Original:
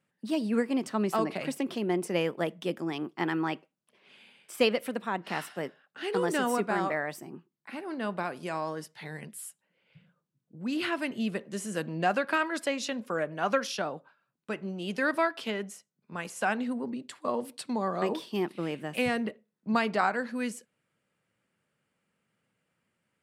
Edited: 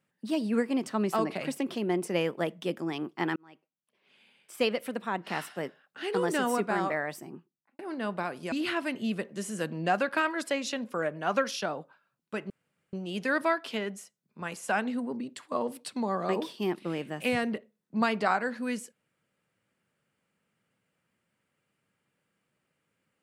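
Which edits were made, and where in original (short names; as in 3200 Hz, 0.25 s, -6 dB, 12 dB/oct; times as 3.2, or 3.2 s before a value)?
3.36–5.13 fade in
7.28–7.79 studio fade out
8.52–10.68 cut
14.66 insert room tone 0.43 s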